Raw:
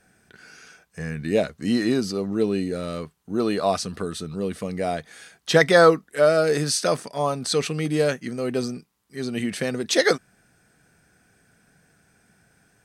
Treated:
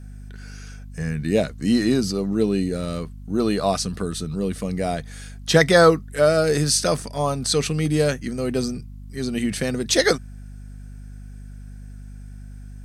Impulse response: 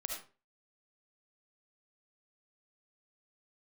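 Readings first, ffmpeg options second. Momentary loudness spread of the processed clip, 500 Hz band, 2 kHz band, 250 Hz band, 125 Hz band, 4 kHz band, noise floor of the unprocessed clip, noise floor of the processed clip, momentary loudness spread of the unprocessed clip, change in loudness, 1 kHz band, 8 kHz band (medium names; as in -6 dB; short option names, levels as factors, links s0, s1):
23 LU, +0.5 dB, 0.0 dB, +3.0 dB, +5.5 dB, +2.5 dB, -65 dBFS, -38 dBFS, 14 LU, +1.5 dB, 0.0 dB, +4.5 dB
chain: -af "aeval=exprs='val(0)+0.00794*(sin(2*PI*50*n/s)+sin(2*PI*2*50*n/s)/2+sin(2*PI*3*50*n/s)/3+sin(2*PI*4*50*n/s)/4+sin(2*PI*5*50*n/s)/5)':c=same,bass=f=250:g=6,treble=f=4000:g=5,bandreject=f=60:t=h:w=6,bandreject=f=120:t=h:w=6"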